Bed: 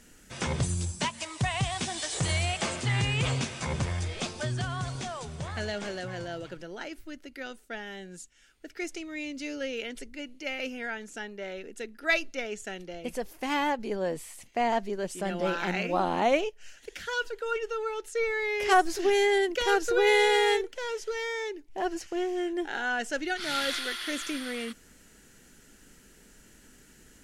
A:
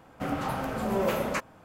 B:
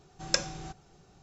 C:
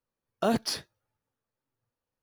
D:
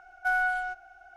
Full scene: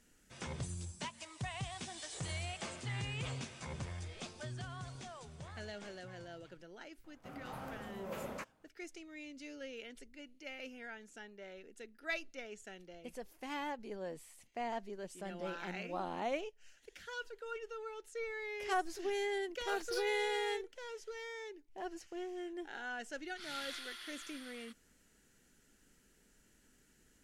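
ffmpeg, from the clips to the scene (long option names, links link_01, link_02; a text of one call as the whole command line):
ffmpeg -i bed.wav -i cue0.wav -i cue1.wav -i cue2.wav -filter_complex "[0:a]volume=-13dB[link_01];[1:a]tremolo=f=1.6:d=0.5[link_02];[3:a]highpass=1100[link_03];[link_02]atrim=end=1.64,asetpts=PTS-STARTPTS,volume=-13.5dB,afade=type=in:duration=0.004:curve=hsin,afade=type=out:start_time=1.636:duration=0.004:curve=hsin,adelay=7040[link_04];[link_03]atrim=end=2.22,asetpts=PTS-STARTPTS,volume=-13dB,afade=type=in:duration=0.004:curve=hsin,afade=type=out:start_time=2.216:duration=0.004:curve=hsin,adelay=19250[link_05];[link_01][link_04][link_05]amix=inputs=3:normalize=0" out.wav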